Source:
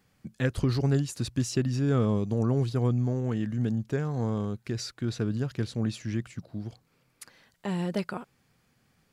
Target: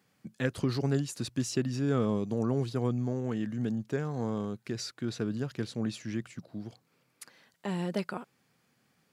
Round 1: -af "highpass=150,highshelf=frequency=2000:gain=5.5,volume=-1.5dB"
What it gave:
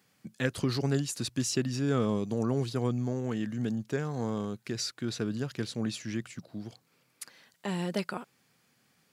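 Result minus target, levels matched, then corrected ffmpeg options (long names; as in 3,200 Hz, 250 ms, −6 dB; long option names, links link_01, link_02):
4,000 Hz band +4.0 dB
-af "highpass=150,volume=-1.5dB"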